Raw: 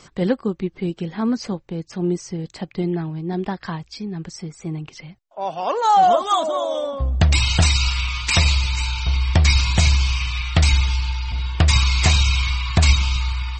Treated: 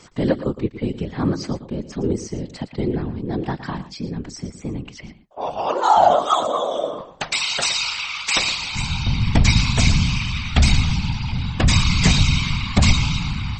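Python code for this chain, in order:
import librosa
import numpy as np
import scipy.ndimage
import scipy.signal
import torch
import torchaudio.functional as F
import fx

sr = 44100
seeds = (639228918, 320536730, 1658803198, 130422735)

p1 = fx.highpass(x, sr, hz=fx.line((6.99, 610.0), (8.74, 260.0)), slope=12, at=(6.99, 8.74), fade=0.02)
p2 = fx.whisperise(p1, sr, seeds[0])
y = p2 + fx.echo_single(p2, sr, ms=114, db=-13.5, dry=0)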